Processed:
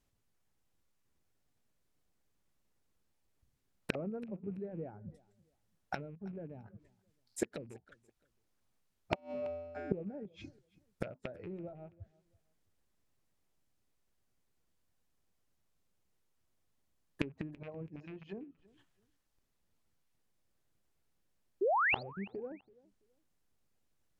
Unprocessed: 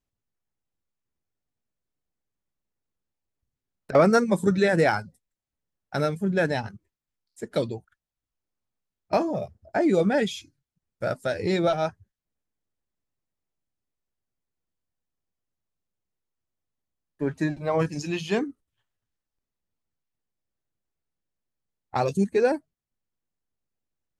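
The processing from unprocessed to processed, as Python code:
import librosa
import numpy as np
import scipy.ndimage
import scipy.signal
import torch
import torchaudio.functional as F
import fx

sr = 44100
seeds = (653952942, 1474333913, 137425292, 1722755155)

y = fx.rattle_buzz(x, sr, strikes_db=-32.0, level_db=-18.0)
y = fx.env_lowpass_down(y, sr, base_hz=440.0, full_db=-21.0)
y = fx.comb_fb(y, sr, f0_hz=84.0, decay_s=1.3, harmonics='odd', damping=0.0, mix_pct=100, at=(9.14, 9.91), fade=0.02)
y = fx.spec_paint(y, sr, seeds[0], shape='rise', start_s=21.61, length_s=0.42, low_hz=350.0, high_hz=4900.0, level_db=-36.0)
y = fx.gate_flip(y, sr, shuts_db=-27.0, range_db=-25)
y = fx.echo_feedback(y, sr, ms=332, feedback_pct=24, wet_db=-22.5)
y = y * 10.0 ** (6.5 / 20.0)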